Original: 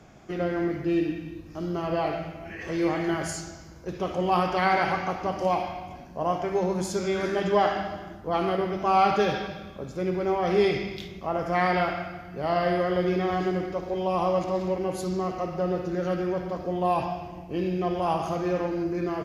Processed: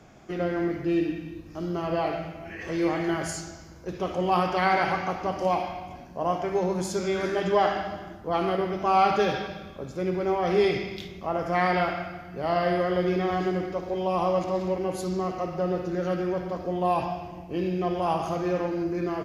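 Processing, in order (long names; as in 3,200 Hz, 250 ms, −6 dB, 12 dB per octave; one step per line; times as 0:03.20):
mains-hum notches 50/100/150/200 Hz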